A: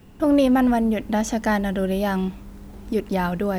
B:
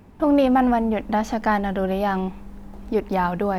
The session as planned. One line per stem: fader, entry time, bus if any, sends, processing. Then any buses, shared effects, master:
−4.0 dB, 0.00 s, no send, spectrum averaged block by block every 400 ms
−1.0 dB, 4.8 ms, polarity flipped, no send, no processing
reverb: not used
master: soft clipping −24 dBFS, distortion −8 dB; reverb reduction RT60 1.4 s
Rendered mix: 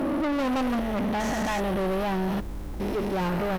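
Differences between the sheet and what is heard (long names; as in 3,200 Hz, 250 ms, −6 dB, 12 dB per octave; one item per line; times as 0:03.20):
stem A −4.0 dB → +5.5 dB
master: missing reverb reduction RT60 1.4 s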